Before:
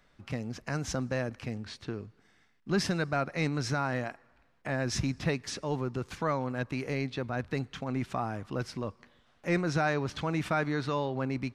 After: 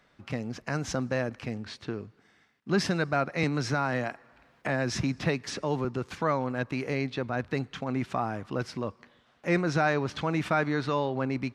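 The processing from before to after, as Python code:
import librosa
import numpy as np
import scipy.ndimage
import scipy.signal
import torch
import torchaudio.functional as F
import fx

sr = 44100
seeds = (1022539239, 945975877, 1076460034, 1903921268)

y = fx.highpass(x, sr, hz=120.0, slope=6)
y = fx.high_shelf(y, sr, hz=6800.0, db=-7.0)
y = fx.band_squash(y, sr, depth_pct=40, at=(3.43, 5.85))
y = y * librosa.db_to_amplitude(3.5)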